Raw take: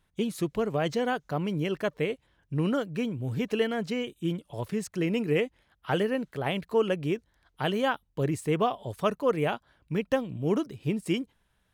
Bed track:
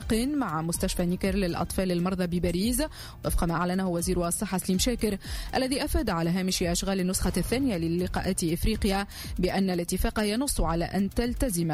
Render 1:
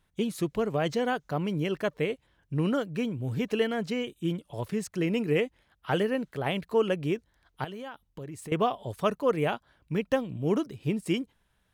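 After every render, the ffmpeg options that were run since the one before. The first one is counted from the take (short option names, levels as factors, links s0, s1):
-filter_complex "[0:a]asettb=1/sr,asplit=3[s0][s1][s2];[s0]atrim=end=7.644[s3];[s1]atrim=start=7.64:end=8.52,asetpts=PTS-STARTPTS,afade=t=in:d=0.004:c=qsin,afade=t=out:st=0.876:d=0.004:c=qsin,acompressor=threshold=0.0126:ratio=5:attack=3.2:release=140:knee=1:detection=peak[s4];[s2]atrim=start=8.516[s5];[s3][s4]acrossfade=d=0.004:c1=hsin:c2=qsin[s6];[s6][s5]acrossfade=d=0.004:c1=qsin:c2=hsin"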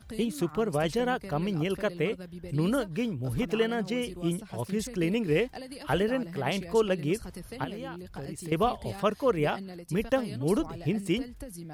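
-filter_complex "[1:a]volume=0.178[s0];[0:a][s0]amix=inputs=2:normalize=0"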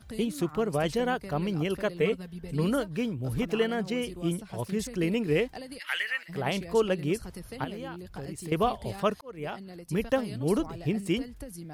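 -filter_complex "[0:a]asettb=1/sr,asplit=3[s0][s1][s2];[s0]atrim=end=2.004[s3];[s1]atrim=start=2:end=2.64,asetpts=PTS-STARTPTS,afade=t=in:d=0.004:c=qsin,afade=t=out:st=0.636:d=0.004:c=qsin,aecho=1:1:4.5:0.65,atrim=end_sample=28224[s4];[s2]atrim=start=2.636[s5];[s3][s4]acrossfade=d=0.004:c1=hsin:c2=qsin[s6];[s6][s5]acrossfade=d=0.004:c1=qsin:c2=hsin,asplit=3[s7][s8][s9];[s7]afade=t=out:st=5.78:d=0.02[s10];[s8]highpass=f=2000:t=q:w=4.4,afade=t=in:st=5.78:d=0.02,afade=t=out:st=6.28:d=0.02[s11];[s9]afade=t=in:st=6.28:d=0.02[s12];[s10][s11][s12]amix=inputs=3:normalize=0,asplit=2[s13][s14];[s13]atrim=end=9.21,asetpts=PTS-STARTPTS,afade=t=out:st=9.206:d=0.004:c=hsin[s15];[s14]atrim=start=9.21,asetpts=PTS-STARTPTS,afade=t=in:d=0.65[s16];[s15][s16]concat=n=2:v=0:a=1"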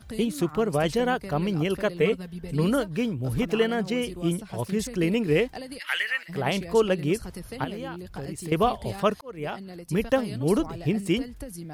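-af "volume=1.5"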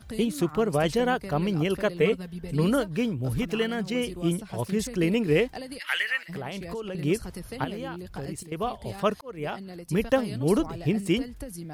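-filter_complex "[0:a]asettb=1/sr,asplit=3[s0][s1][s2];[s0]atrim=end=3.334[s3];[s1]atrim=start=3.33:end=3.95,asetpts=PTS-STARTPTS,afade=t=in:d=0.004:c=qsin,afade=t=out:st=0.616:d=0.004:c=qsin,equalizer=f=620:t=o:w=2.3:g=-5.5[s4];[s2]atrim=start=3.946[s5];[s3][s4]acrossfade=d=0.004:c1=hsin:c2=qsin[s6];[s6][s5]acrossfade=d=0.004:c1=qsin:c2=hsin,asettb=1/sr,asplit=3[s7][s8][s9];[s7]atrim=end=6.344[s10];[s8]atrim=start=6.34:end=6.95,asetpts=PTS-STARTPTS,afade=t=in:d=0.004:c=qsin,afade=t=out:st=0.606:d=0.004:c=qsin,acompressor=threshold=0.0316:ratio=12:attack=3.2:release=140:knee=1:detection=peak[s11];[s9]atrim=start=6.946[s12];[s10][s11]acrossfade=d=0.004:c1=hsin:c2=qsin[s13];[s13][s12]acrossfade=d=0.004:c1=qsin:c2=hsin,asplit=2[s14][s15];[s14]atrim=end=8.43,asetpts=PTS-STARTPTS,afade=t=out:st=8.426:d=0.004:c=hsin:silence=0.237137[s16];[s15]atrim=start=8.43,asetpts=PTS-STARTPTS,afade=t=in:d=0.82:silence=0.237137[s17];[s16][s17]concat=n=2:v=0:a=1"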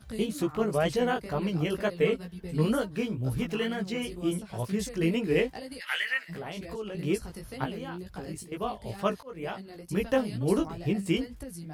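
-af "flanger=delay=15:depth=4.5:speed=2.1"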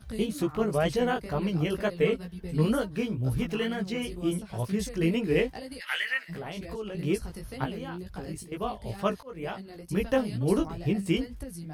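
-af "lowshelf=f=86:g=7,bandreject=f=7300:w=14"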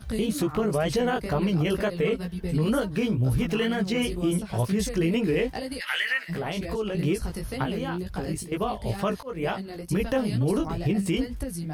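-af "acontrast=85,alimiter=limit=0.15:level=0:latency=1:release=74"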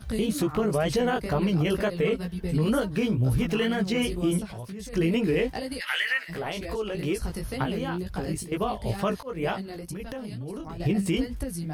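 -filter_complex "[0:a]asettb=1/sr,asplit=3[s0][s1][s2];[s0]atrim=end=4.464[s3];[s1]atrim=start=4.46:end=4.93,asetpts=PTS-STARTPTS,afade=t=in:d=0.004:c=qsin,afade=t=out:st=0.466:d=0.004:c=qsin,acompressor=threshold=0.0141:ratio=4:attack=3.2:release=140:knee=1:detection=peak[s4];[s2]atrim=start=4.926[s5];[s3][s4]acrossfade=d=0.004:c1=hsin:c2=qsin[s6];[s6][s5]acrossfade=d=0.004:c1=qsin:c2=hsin,asettb=1/sr,asplit=3[s7][s8][s9];[s7]atrim=end=5.914[s10];[s8]atrim=start=5.91:end=7.22,asetpts=PTS-STARTPTS,afade=t=in:d=0.004:c=qsin,afade=t=out:st=1.306:d=0.004:c=qsin,equalizer=f=170:w=1.2:g=-7[s11];[s9]atrim=start=7.216[s12];[s10][s11]acrossfade=d=0.004:c1=hsin:c2=qsin[s13];[s13][s12]acrossfade=d=0.004:c1=qsin:c2=hsin,asettb=1/sr,asplit=3[s14][s15][s16];[s14]atrim=end=9.764[s17];[s15]atrim=start=9.76:end=10.8,asetpts=PTS-STARTPTS,afade=t=in:d=0.004:c=qsin,afade=t=out:st=1.036:d=0.004:c=qsin,acompressor=threshold=0.0224:ratio=6:attack=3.2:release=140:knee=1:detection=peak[s18];[s16]atrim=start=10.796[s19];[s17][s18]acrossfade=d=0.004:c1=hsin:c2=qsin[s20];[s20][s19]acrossfade=d=0.004:c1=qsin:c2=hsin"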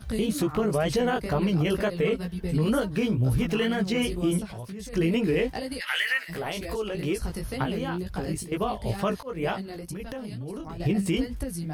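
-filter_complex "[0:a]asettb=1/sr,asplit=3[s0][s1][s2];[s0]atrim=end=5.954[s3];[s1]atrim=start=5.95:end=6.89,asetpts=PTS-STARTPTS,afade=t=in:d=0.004:c=qsin,afade=t=out:st=0.936:d=0.004:c=qsin,highshelf=f=7800:g=7.5[s4];[s2]atrim=start=6.886[s5];[s3][s4]acrossfade=d=0.004:c1=hsin:c2=qsin[s6];[s6][s5]acrossfade=d=0.004:c1=qsin:c2=hsin"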